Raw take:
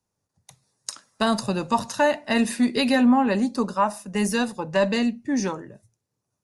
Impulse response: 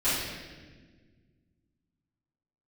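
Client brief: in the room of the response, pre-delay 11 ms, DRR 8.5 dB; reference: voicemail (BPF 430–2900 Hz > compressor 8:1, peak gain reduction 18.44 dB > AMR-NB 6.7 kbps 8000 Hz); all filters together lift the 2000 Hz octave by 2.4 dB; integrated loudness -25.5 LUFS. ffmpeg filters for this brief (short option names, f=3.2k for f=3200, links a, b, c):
-filter_complex "[0:a]equalizer=f=2k:t=o:g=4,asplit=2[a][b];[1:a]atrim=start_sample=2205,adelay=11[c];[b][c]afir=irnorm=-1:irlink=0,volume=-20.5dB[d];[a][d]amix=inputs=2:normalize=0,highpass=430,lowpass=2.9k,acompressor=threshold=-34dB:ratio=8,volume=14dB" -ar 8000 -c:a libopencore_amrnb -b:a 6700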